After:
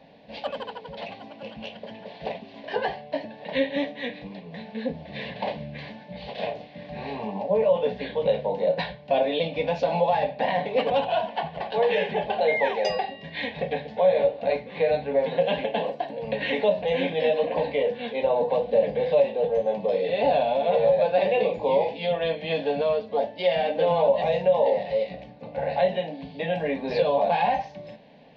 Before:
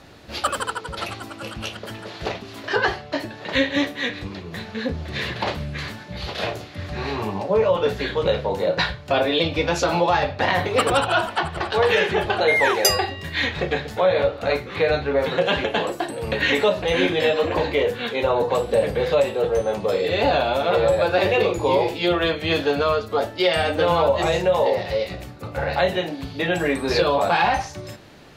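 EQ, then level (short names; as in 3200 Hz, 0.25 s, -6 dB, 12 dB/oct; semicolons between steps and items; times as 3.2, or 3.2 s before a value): Gaussian blur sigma 2.7 samples; HPF 180 Hz 6 dB/oct; fixed phaser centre 350 Hz, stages 6; 0.0 dB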